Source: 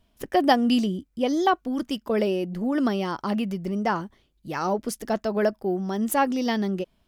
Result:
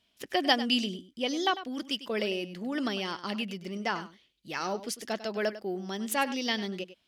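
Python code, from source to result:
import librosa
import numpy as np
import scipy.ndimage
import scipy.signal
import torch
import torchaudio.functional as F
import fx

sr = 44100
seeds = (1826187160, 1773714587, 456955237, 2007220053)

y = fx.weighting(x, sr, curve='D')
y = y + 10.0 ** (-14.0 / 20.0) * np.pad(y, (int(99 * sr / 1000.0), 0))[:len(y)]
y = y * librosa.db_to_amplitude(-7.5)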